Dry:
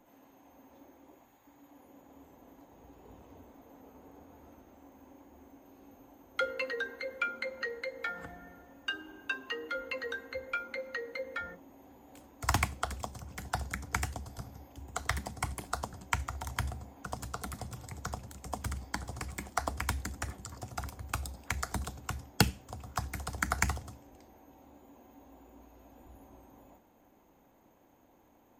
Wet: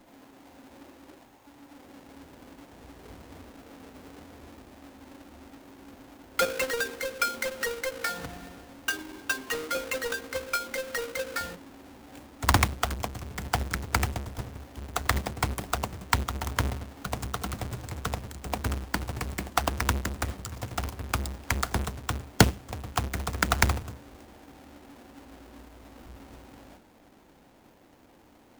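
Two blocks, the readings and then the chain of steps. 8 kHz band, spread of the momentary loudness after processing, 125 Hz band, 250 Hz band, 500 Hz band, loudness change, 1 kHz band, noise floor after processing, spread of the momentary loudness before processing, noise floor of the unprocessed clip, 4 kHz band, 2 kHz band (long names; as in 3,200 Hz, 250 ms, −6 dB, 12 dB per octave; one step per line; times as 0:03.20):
+6.5 dB, 22 LU, +7.0 dB, +8.5 dB, +7.0 dB, +7.0 dB, +6.5 dB, −57 dBFS, 23 LU, −64 dBFS, +8.0 dB, +5.5 dB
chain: each half-wave held at its own peak
level +2.5 dB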